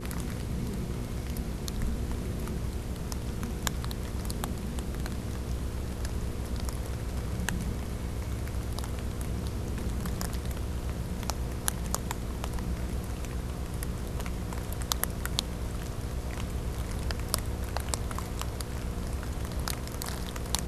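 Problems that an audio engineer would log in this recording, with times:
hum 60 Hz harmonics 8 -38 dBFS

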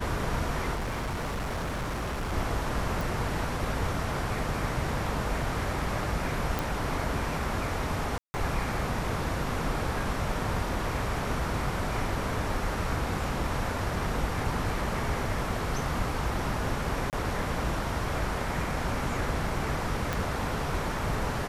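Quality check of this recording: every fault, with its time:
0.74–2.33 s: clipped -28.5 dBFS
3.01 s: pop
6.59 s: pop
8.18–8.34 s: dropout 160 ms
17.10–17.13 s: dropout 28 ms
20.13 s: pop

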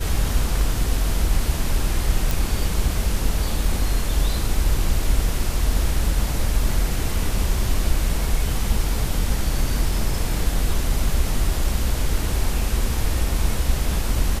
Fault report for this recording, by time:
2.31 s: pop

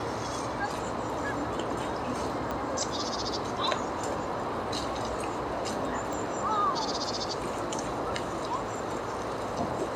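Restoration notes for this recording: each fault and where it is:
2.51 s: pop -20 dBFS
6.13 s: pop -22 dBFS

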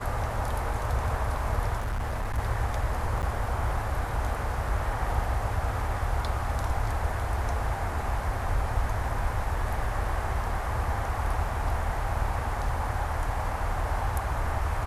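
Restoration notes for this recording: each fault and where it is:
1.79–2.39 s: clipped -26.5 dBFS
3.22–3.23 s: dropout 9.2 ms

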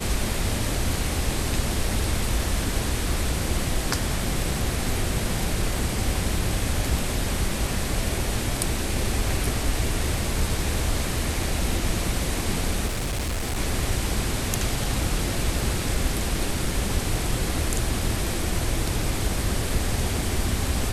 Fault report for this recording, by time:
12.86–13.58 s: clipped -23.5 dBFS

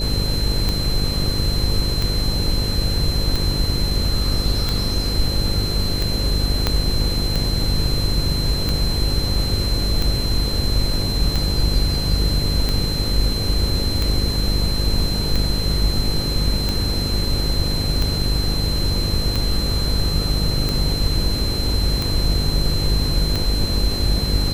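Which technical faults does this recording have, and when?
buzz 50 Hz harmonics 11 -24 dBFS
tick 45 rpm -8 dBFS
whine 4.1 kHz -25 dBFS
6.67 s: pop -3 dBFS

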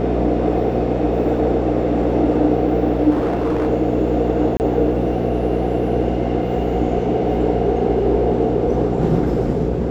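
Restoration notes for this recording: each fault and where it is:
buzz 60 Hz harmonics 9 -22 dBFS
3.10–3.68 s: clipped -15 dBFS
4.57–4.60 s: dropout 29 ms

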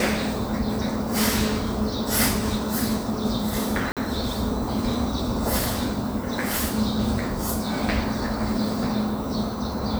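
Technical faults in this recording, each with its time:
3.92–3.97 s: dropout 47 ms

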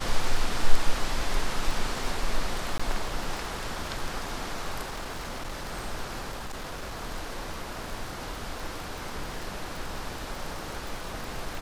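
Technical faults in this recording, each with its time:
crackle 31 per s -31 dBFS
2.78–2.79 s: dropout 15 ms
4.82–5.72 s: clipped -31 dBFS
6.31–7.01 s: clipped -32 dBFS

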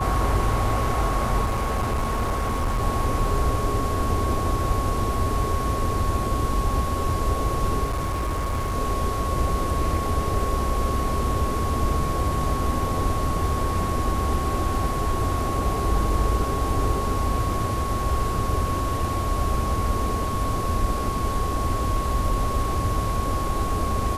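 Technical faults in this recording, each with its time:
whine 1.1 kHz -28 dBFS
1.44–2.83 s: clipped -20 dBFS
7.84–8.75 s: clipped -22 dBFS

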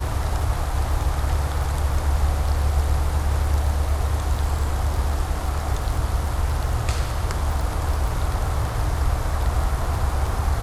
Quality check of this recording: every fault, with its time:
crackle 14 per s -27 dBFS

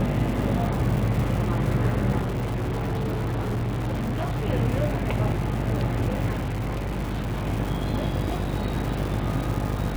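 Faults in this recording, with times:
buzz 50 Hz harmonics 18 -29 dBFS
crackle 360 per s -30 dBFS
2.20–4.46 s: clipped -23.5 dBFS
6.32–7.47 s: clipped -24 dBFS

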